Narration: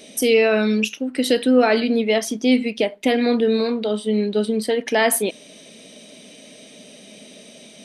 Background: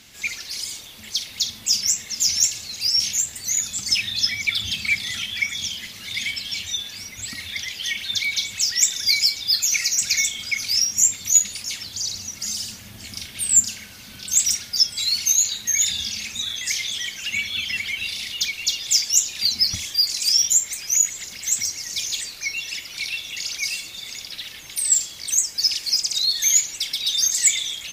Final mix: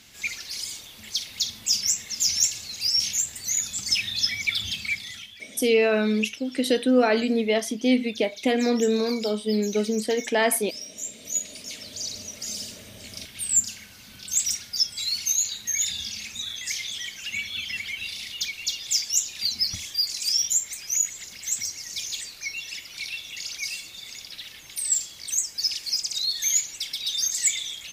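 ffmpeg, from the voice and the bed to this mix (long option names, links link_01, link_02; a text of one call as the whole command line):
ffmpeg -i stem1.wav -i stem2.wav -filter_complex "[0:a]adelay=5400,volume=-4dB[link_01];[1:a]volume=10dB,afade=type=out:start_time=4.6:duration=0.77:silence=0.16788,afade=type=in:start_time=10.99:duration=1.08:silence=0.223872[link_02];[link_01][link_02]amix=inputs=2:normalize=0" out.wav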